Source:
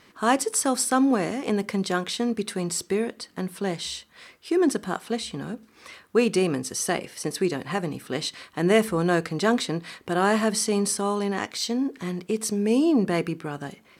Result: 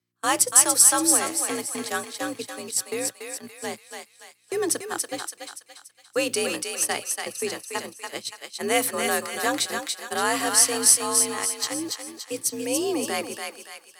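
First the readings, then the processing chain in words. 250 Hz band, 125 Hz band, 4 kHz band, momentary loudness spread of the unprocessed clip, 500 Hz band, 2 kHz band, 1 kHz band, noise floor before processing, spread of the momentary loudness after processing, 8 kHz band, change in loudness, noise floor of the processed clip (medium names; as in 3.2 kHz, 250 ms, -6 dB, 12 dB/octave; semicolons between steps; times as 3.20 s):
-8.5 dB, -17.0 dB, +3.5 dB, 11 LU, -4.0 dB, +1.5 dB, -0.5 dB, -57 dBFS, 18 LU, +10.5 dB, +2.5 dB, -57 dBFS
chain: hum 60 Hz, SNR 12 dB; gate -26 dBFS, range -34 dB; frequency shift +54 Hz; RIAA curve recording; on a send: thinning echo 286 ms, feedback 47%, high-pass 790 Hz, level -3.5 dB; on the sum: trim -2 dB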